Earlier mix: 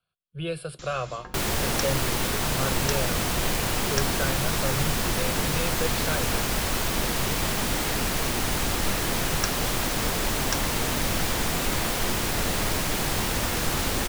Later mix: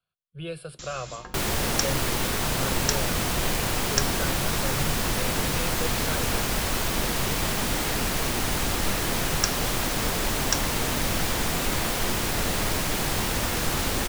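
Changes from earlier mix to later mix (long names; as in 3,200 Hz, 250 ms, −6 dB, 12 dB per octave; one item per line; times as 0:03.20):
speech −4.0 dB
first sound: remove low-pass filter 3,500 Hz 6 dB per octave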